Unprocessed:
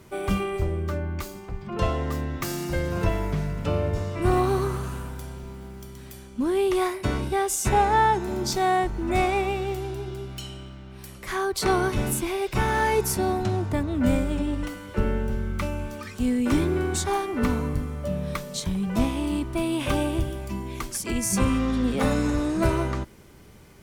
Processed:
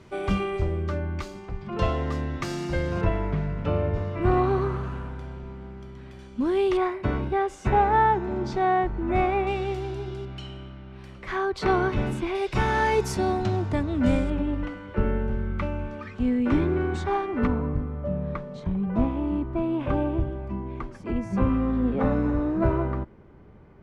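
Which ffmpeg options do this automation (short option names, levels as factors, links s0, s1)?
-af "asetnsamples=n=441:p=0,asendcmd='3.01 lowpass f 2500;6.19 lowpass f 4500;6.77 lowpass f 2100;9.47 lowpass f 4900;10.25 lowpass f 2900;12.35 lowpass f 5500;14.3 lowpass f 2300;17.47 lowpass f 1300',lowpass=5100"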